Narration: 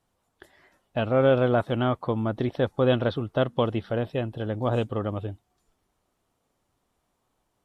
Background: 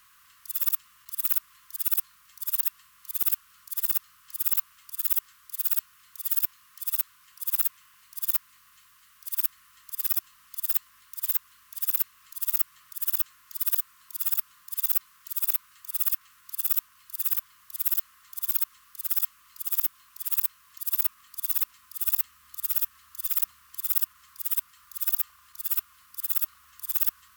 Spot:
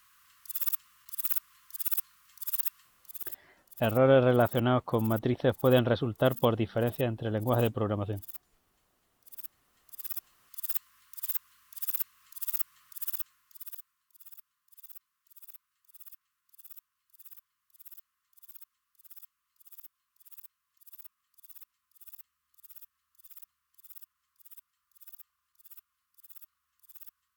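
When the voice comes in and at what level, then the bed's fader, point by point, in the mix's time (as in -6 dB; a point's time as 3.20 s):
2.85 s, -1.5 dB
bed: 2.79 s -4.5 dB
3.48 s -18 dB
9.24 s -18 dB
10.65 s -6 dB
13.02 s -6 dB
14.09 s -24 dB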